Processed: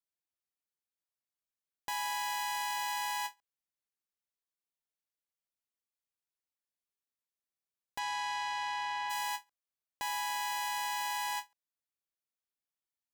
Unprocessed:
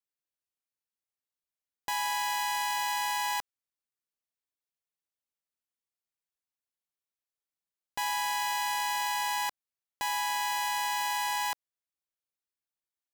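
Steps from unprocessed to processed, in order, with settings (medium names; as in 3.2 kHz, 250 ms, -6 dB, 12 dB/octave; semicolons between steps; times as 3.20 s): 7.98–9.09 s: low-pass 6.6 kHz -> 3.2 kHz 12 dB/octave; endings held to a fixed fall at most 400 dB/s; trim -4.5 dB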